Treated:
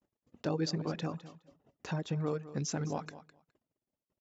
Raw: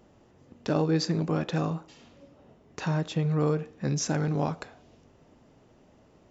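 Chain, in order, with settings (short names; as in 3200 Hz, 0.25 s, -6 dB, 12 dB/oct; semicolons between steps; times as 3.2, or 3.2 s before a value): reverb removal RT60 0.81 s; gate -56 dBFS, range -41 dB; low shelf 99 Hz -2.5 dB; tempo 1.5×; feedback echo 0.208 s, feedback 15%, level -15 dB; gain -5.5 dB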